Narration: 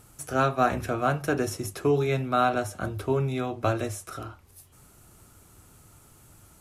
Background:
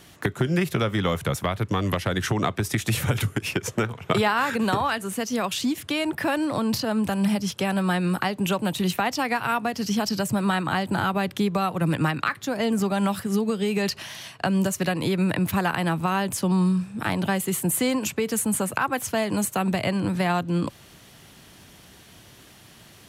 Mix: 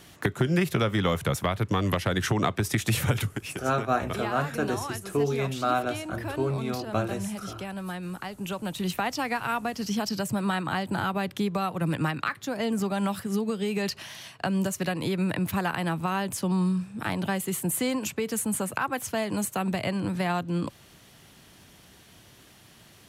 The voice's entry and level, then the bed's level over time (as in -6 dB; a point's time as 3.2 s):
3.30 s, -2.5 dB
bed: 3.1 s -1 dB
3.62 s -11.5 dB
8.24 s -11.5 dB
8.97 s -4 dB